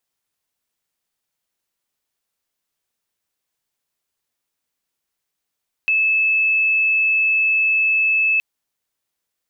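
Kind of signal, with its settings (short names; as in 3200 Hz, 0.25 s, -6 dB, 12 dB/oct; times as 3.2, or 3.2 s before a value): tone sine 2610 Hz -14 dBFS 2.52 s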